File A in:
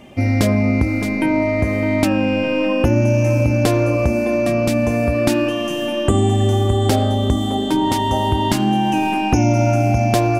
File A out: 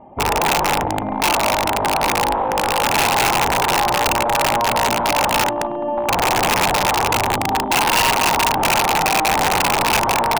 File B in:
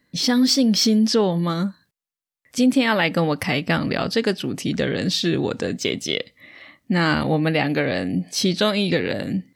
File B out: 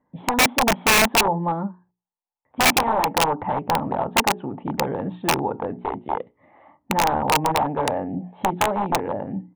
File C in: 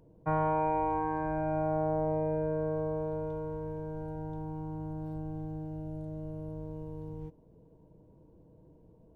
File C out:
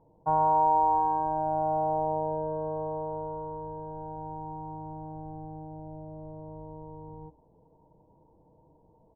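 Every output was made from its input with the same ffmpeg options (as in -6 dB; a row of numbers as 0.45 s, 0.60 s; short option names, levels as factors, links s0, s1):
-af "bandreject=f=60:t=h:w=6,bandreject=f=120:t=h:w=6,bandreject=f=180:t=h:w=6,bandreject=f=240:t=h:w=6,bandreject=f=300:t=h:w=6,bandreject=f=360:t=h:w=6,bandreject=f=420:t=h:w=6,aresample=8000,aeval=exprs='(mod(4.73*val(0)+1,2)-1)/4.73':c=same,aresample=44100,lowpass=f=880:t=q:w=7.1,aeval=exprs='(mod(2*val(0)+1,2)-1)/2':c=same,volume=0.596"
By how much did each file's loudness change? +0.5 LU, -1.0 LU, +5.0 LU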